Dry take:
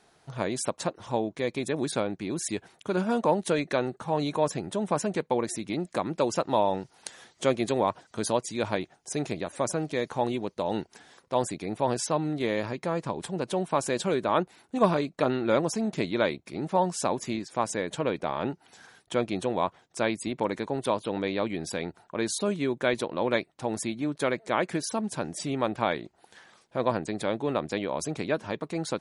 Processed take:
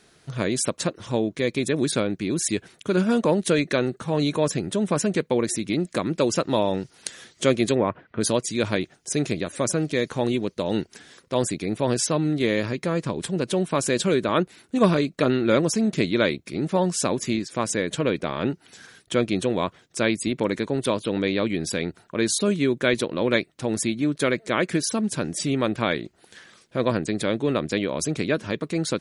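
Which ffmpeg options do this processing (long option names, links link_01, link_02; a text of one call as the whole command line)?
ffmpeg -i in.wav -filter_complex "[0:a]asplit=3[link_01][link_02][link_03];[link_01]afade=type=out:start_time=7.74:duration=0.02[link_04];[link_02]lowpass=frequency=2400:width=0.5412,lowpass=frequency=2400:width=1.3066,afade=type=in:start_time=7.74:duration=0.02,afade=type=out:start_time=8.2:duration=0.02[link_05];[link_03]afade=type=in:start_time=8.2:duration=0.02[link_06];[link_04][link_05][link_06]amix=inputs=3:normalize=0,equalizer=frequency=830:width=1.6:gain=-11.5,volume=7.5dB" out.wav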